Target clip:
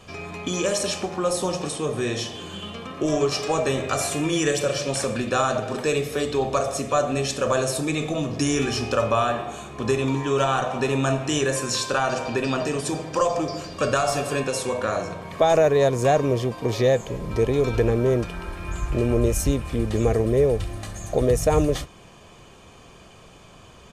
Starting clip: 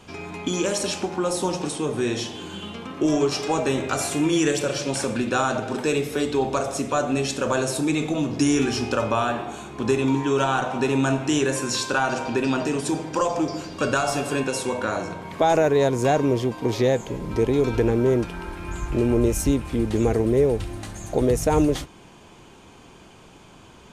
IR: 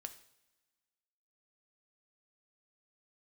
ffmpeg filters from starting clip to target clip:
-af "aecho=1:1:1.7:0.4"

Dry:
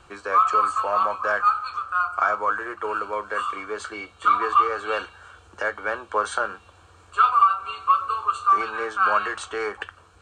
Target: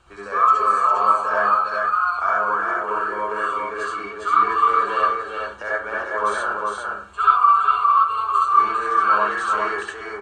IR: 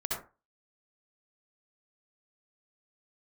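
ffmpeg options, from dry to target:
-filter_complex "[0:a]aecho=1:1:405:0.668[s0];[1:a]atrim=start_sample=2205[s1];[s0][s1]afir=irnorm=-1:irlink=0,volume=0.631"

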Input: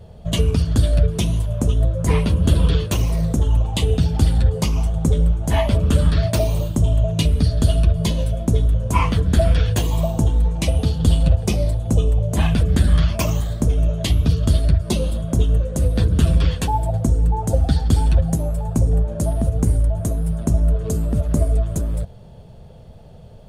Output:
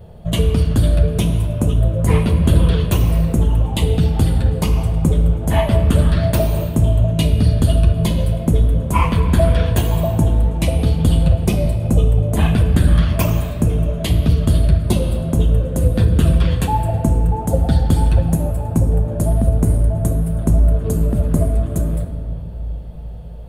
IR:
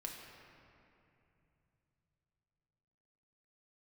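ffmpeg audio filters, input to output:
-filter_complex "[0:a]equalizer=f=5900:t=o:w=1.2:g=-9.5,asplit=2[s0][s1];[1:a]atrim=start_sample=2205,highshelf=f=6400:g=8.5[s2];[s1][s2]afir=irnorm=-1:irlink=0,volume=1.5[s3];[s0][s3]amix=inputs=2:normalize=0,volume=0.708"

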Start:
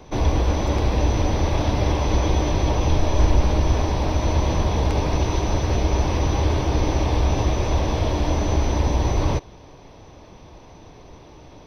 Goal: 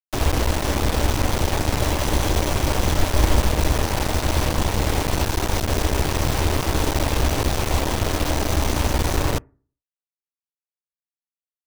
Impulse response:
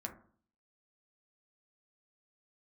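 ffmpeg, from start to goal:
-filter_complex "[0:a]aeval=exprs='0.562*(cos(1*acos(clip(val(0)/0.562,-1,1)))-cos(1*PI/2))+0.251*(cos(2*acos(clip(val(0)/0.562,-1,1)))-cos(2*PI/2))+0.0178*(cos(3*acos(clip(val(0)/0.562,-1,1)))-cos(3*PI/2))+0.126*(cos(4*acos(clip(val(0)/0.562,-1,1)))-cos(4*PI/2))+0.0224*(cos(8*acos(clip(val(0)/0.562,-1,1)))-cos(8*PI/2))':c=same,acrusher=bits=3:mix=0:aa=0.000001,asplit=2[s0][s1];[1:a]atrim=start_sample=2205,asetrate=52920,aresample=44100[s2];[s1][s2]afir=irnorm=-1:irlink=0,volume=0.133[s3];[s0][s3]amix=inputs=2:normalize=0,volume=0.841"

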